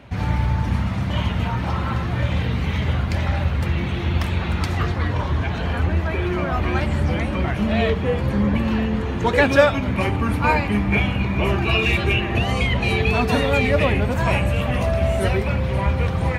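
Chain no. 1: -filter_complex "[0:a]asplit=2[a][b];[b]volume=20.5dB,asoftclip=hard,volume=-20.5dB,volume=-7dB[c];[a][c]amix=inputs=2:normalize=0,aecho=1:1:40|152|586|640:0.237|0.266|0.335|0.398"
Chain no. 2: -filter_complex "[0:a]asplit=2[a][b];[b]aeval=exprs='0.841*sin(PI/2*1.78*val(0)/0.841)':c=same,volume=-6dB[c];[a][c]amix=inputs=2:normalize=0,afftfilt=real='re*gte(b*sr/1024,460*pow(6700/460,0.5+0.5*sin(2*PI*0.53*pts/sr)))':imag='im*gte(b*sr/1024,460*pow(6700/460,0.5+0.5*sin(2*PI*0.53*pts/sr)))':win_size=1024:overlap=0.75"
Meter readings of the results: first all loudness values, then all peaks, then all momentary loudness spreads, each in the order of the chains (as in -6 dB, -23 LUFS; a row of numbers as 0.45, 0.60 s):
-17.0, -21.5 LUFS; -1.5, -2.0 dBFS; 4, 20 LU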